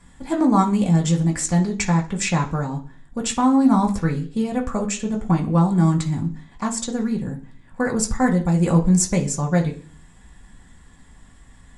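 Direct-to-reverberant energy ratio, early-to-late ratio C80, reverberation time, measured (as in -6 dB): -1.5 dB, 18.0 dB, 0.45 s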